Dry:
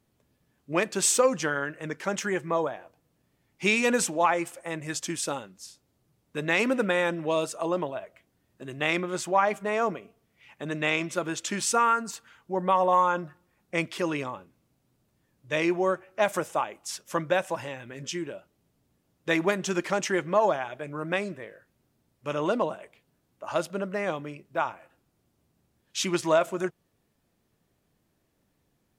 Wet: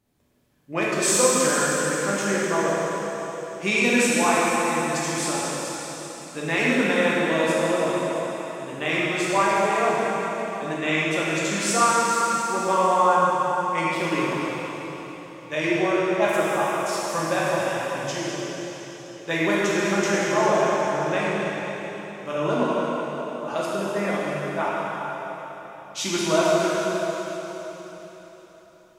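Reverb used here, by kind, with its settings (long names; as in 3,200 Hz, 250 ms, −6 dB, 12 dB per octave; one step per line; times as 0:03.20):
dense smooth reverb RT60 4.1 s, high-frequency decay 1×, DRR −7.5 dB
level −2.5 dB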